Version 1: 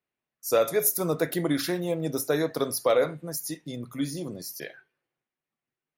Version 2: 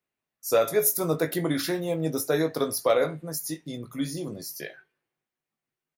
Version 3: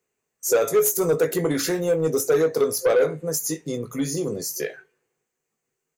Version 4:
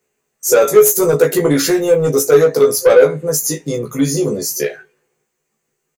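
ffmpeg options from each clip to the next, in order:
ffmpeg -i in.wav -filter_complex "[0:a]asplit=2[link_01][link_02];[link_02]adelay=19,volume=-8dB[link_03];[link_01][link_03]amix=inputs=2:normalize=0" out.wav
ffmpeg -i in.wav -filter_complex "[0:a]superequalizer=7b=2.82:13b=0.631:15b=2.82,asplit=2[link_01][link_02];[link_02]acompressor=threshold=-28dB:ratio=6,volume=0dB[link_03];[link_01][link_03]amix=inputs=2:normalize=0,asoftclip=type=tanh:threshold=-13dB" out.wav
ffmpeg -i in.wav -filter_complex "[0:a]asplit=2[link_01][link_02];[link_02]adelay=14,volume=-2dB[link_03];[link_01][link_03]amix=inputs=2:normalize=0,volume=6.5dB" out.wav

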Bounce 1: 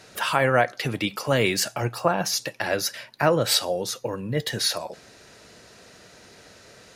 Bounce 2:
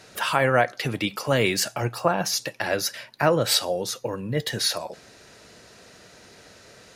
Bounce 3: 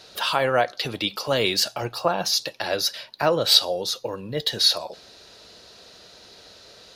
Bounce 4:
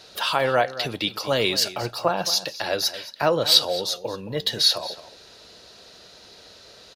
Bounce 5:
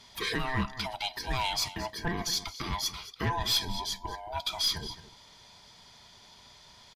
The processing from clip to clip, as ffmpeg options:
ffmpeg -i in.wav -af anull out.wav
ffmpeg -i in.wav -af "equalizer=frequency=125:width_type=o:width=1:gain=-7,equalizer=frequency=250:width_type=o:width=1:gain=-4,equalizer=frequency=2000:width_type=o:width=1:gain=-7,equalizer=frequency=4000:width_type=o:width=1:gain=10,equalizer=frequency=8000:width_type=o:width=1:gain=-7,volume=1dB" out.wav
ffmpeg -i in.wav -filter_complex "[0:a]asplit=2[link_01][link_02];[link_02]adelay=221.6,volume=-14dB,highshelf=frequency=4000:gain=-4.99[link_03];[link_01][link_03]amix=inputs=2:normalize=0" out.wav
ffmpeg -i in.wav -af "afftfilt=real='real(if(lt(b,1008),b+24*(1-2*mod(floor(b/24),2)),b),0)':imag='imag(if(lt(b,1008),b+24*(1-2*mod(floor(b/24),2)),b),0)':win_size=2048:overlap=0.75,aeval=exprs='(tanh(5.62*val(0)+0.15)-tanh(0.15))/5.62':channel_layout=same,aresample=32000,aresample=44100,volume=-6.5dB" out.wav

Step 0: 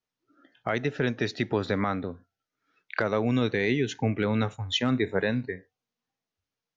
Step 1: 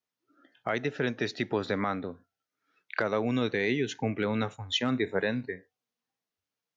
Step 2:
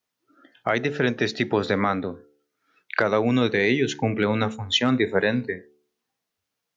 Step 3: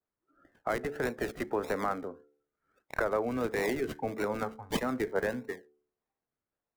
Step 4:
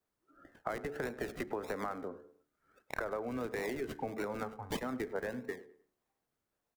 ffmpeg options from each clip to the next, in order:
ffmpeg -i in.wav -af "highpass=frequency=170:poles=1,volume=-1.5dB" out.wav
ffmpeg -i in.wav -af "bandreject=frequency=73.15:width_type=h:width=4,bandreject=frequency=146.3:width_type=h:width=4,bandreject=frequency=219.45:width_type=h:width=4,bandreject=frequency=292.6:width_type=h:width=4,bandreject=frequency=365.75:width_type=h:width=4,bandreject=frequency=438.9:width_type=h:width=4,bandreject=frequency=512.05:width_type=h:width=4,volume=7.5dB" out.wav
ffmpeg -i in.wav -filter_complex "[0:a]bass=frequency=250:gain=-12,treble=frequency=4000:gain=-5,acrossover=split=310|880|1900[link_01][link_02][link_03][link_04];[link_04]acrusher=samples=39:mix=1:aa=0.000001:lfo=1:lforange=23.4:lforate=1.6[link_05];[link_01][link_02][link_03][link_05]amix=inputs=4:normalize=0,adynamicequalizer=threshold=0.0126:dfrequency=2900:dqfactor=0.7:tfrequency=2900:tqfactor=0.7:attack=5:release=100:ratio=0.375:range=2:mode=boostabove:tftype=highshelf,volume=-7dB" out.wav
ffmpeg -i in.wav -filter_complex "[0:a]acompressor=threshold=-41dB:ratio=4,asplit=2[link_01][link_02];[link_02]adelay=102,lowpass=frequency=2800:poles=1,volume=-17dB,asplit=2[link_03][link_04];[link_04]adelay=102,lowpass=frequency=2800:poles=1,volume=0.37,asplit=2[link_05][link_06];[link_06]adelay=102,lowpass=frequency=2800:poles=1,volume=0.37[link_07];[link_01][link_03][link_05][link_07]amix=inputs=4:normalize=0,volume=4.5dB" out.wav

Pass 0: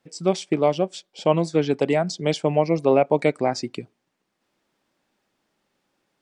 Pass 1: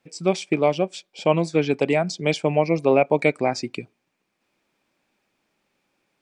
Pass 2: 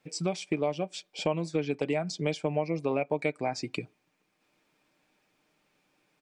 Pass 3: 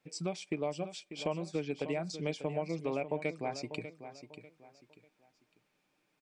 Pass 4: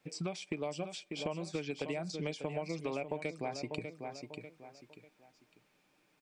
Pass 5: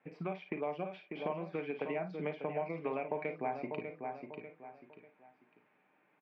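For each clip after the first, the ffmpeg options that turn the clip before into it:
ffmpeg -i in.wav -af "equalizer=frequency=2400:width=7.4:gain=10" out.wav
ffmpeg -i in.wav -af "aecho=1:1:6.6:0.38,acompressor=threshold=-29dB:ratio=3" out.wav
ffmpeg -i in.wav -af "aecho=1:1:594|1188|1782:0.266|0.0825|0.0256,volume=-6dB" out.wav
ffmpeg -i in.wav -filter_complex "[0:a]acrossover=split=970|3800[link_01][link_02][link_03];[link_01]acompressor=threshold=-41dB:ratio=4[link_04];[link_02]acompressor=threshold=-51dB:ratio=4[link_05];[link_03]acompressor=threshold=-54dB:ratio=4[link_06];[link_04][link_05][link_06]amix=inputs=3:normalize=0,volume=5dB" out.wav
ffmpeg -i in.wav -af "highpass=240,equalizer=frequency=320:width_type=q:width=4:gain=-6,equalizer=frequency=530:width_type=q:width=4:gain=-5,equalizer=frequency=1300:width_type=q:width=4:gain=-3,lowpass=frequency=2100:width=0.5412,lowpass=frequency=2100:width=1.3066,aecho=1:1:38|54:0.266|0.299,volume=4dB" out.wav

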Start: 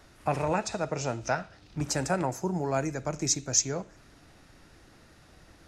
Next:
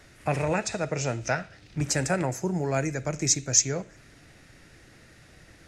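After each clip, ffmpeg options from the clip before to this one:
ffmpeg -i in.wav -af "equalizer=frequency=125:width_type=o:width=1:gain=5,equalizer=frequency=500:width_type=o:width=1:gain=3,equalizer=frequency=1000:width_type=o:width=1:gain=-5,equalizer=frequency=2000:width_type=o:width=1:gain=8,equalizer=frequency=8000:width_type=o:width=1:gain=5" out.wav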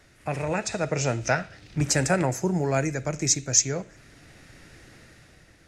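ffmpeg -i in.wav -af "dynaudnorm=framelen=120:gausssize=11:maxgain=7dB,volume=-3.5dB" out.wav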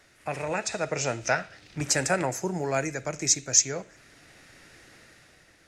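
ffmpeg -i in.wav -af "lowshelf=frequency=260:gain=-10.5" out.wav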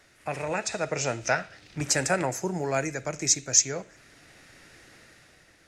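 ffmpeg -i in.wav -af anull out.wav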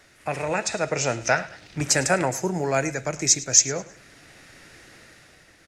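ffmpeg -i in.wav -af "aecho=1:1:105|210|315:0.112|0.0348|0.0108,volume=4dB" out.wav

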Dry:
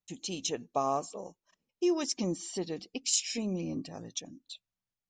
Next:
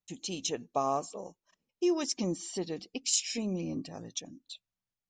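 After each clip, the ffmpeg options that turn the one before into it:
ffmpeg -i in.wav -af anull out.wav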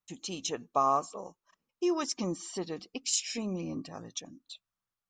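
ffmpeg -i in.wav -af "equalizer=frequency=1200:width=1.8:gain=10.5,volume=-1.5dB" out.wav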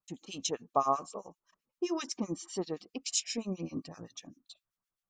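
ffmpeg -i in.wav -filter_complex "[0:a]acrossover=split=1500[link_01][link_02];[link_01]aeval=exprs='val(0)*(1-1/2+1/2*cos(2*PI*7.7*n/s))':channel_layout=same[link_03];[link_02]aeval=exprs='val(0)*(1-1/2-1/2*cos(2*PI*7.7*n/s))':channel_layout=same[link_04];[link_03][link_04]amix=inputs=2:normalize=0,volume=2dB" out.wav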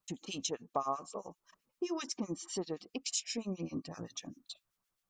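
ffmpeg -i in.wav -af "acompressor=threshold=-47dB:ratio=2,volume=6dB" out.wav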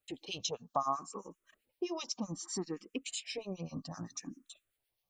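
ffmpeg -i in.wav -filter_complex "[0:a]asplit=2[link_01][link_02];[link_02]afreqshift=0.64[link_03];[link_01][link_03]amix=inputs=2:normalize=1,volume=3dB" out.wav

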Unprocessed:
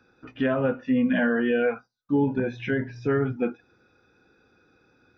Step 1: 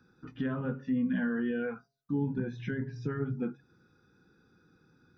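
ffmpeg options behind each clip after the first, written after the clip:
ffmpeg -i in.wav -af "equalizer=frequency=160:width_type=o:width=0.67:gain=10,equalizer=frequency=630:width_type=o:width=0.67:gain=-12,equalizer=frequency=2500:width_type=o:width=0.67:gain=-10,acompressor=threshold=-35dB:ratio=1.5,bandreject=frequency=137.1:width_type=h:width=4,bandreject=frequency=274.2:width_type=h:width=4,bandreject=frequency=411.3:width_type=h:width=4,bandreject=frequency=548.4:width_type=h:width=4,bandreject=frequency=685.5:width_type=h:width=4,volume=-2.5dB" out.wav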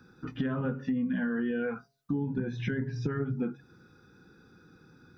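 ffmpeg -i in.wav -af "acompressor=threshold=-35dB:ratio=6,volume=7.5dB" out.wav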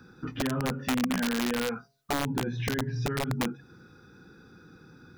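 ffmpeg -i in.wav -filter_complex "[0:a]asplit=2[link_01][link_02];[link_02]alimiter=level_in=5.5dB:limit=-24dB:level=0:latency=1:release=163,volume=-5.5dB,volume=2dB[link_03];[link_01][link_03]amix=inputs=2:normalize=0,aeval=exprs='(mod(9.44*val(0)+1,2)-1)/9.44':channel_layout=same,volume=-2.5dB" out.wav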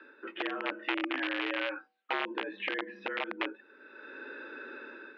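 ffmpeg -i in.wav -af "crystalizer=i=9.5:c=0,dynaudnorm=framelen=170:gausssize=5:maxgain=9dB,highpass=frequency=220:width_type=q:width=0.5412,highpass=frequency=220:width_type=q:width=1.307,lowpass=frequency=2800:width_type=q:width=0.5176,lowpass=frequency=2800:width_type=q:width=0.7071,lowpass=frequency=2800:width_type=q:width=1.932,afreqshift=78,volume=-2.5dB" out.wav

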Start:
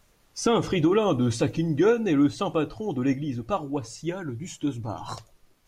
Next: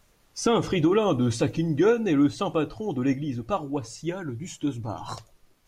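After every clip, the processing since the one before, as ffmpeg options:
ffmpeg -i in.wav -af anull out.wav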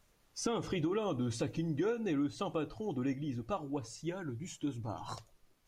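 ffmpeg -i in.wav -af "acompressor=threshold=-24dB:ratio=3,volume=-7.5dB" out.wav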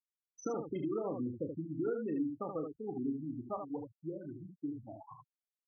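ffmpeg -i in.wav -af "afftfilt=real='re*gte(hypot(re,im),0.0447)':imag='im*gte(hypot(re,im),0.0447)':win_size=1024:overlap=0.75,highpass=170,lowpass=5900,aecho=1:1:32|76:0.355|0.501,volume=-2.5dB" out.wav

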